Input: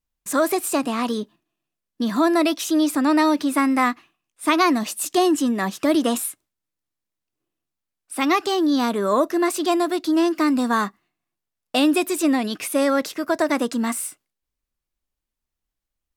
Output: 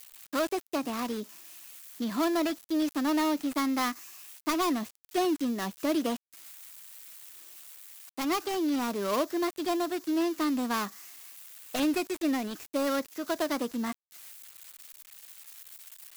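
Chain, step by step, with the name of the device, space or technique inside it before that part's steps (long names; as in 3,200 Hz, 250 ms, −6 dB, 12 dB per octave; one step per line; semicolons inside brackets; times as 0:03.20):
budget class-D amplifier (gap after every zero crossing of 0.15 ms; spike at every zero crossing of −23.5 dBFS)
level −9 dB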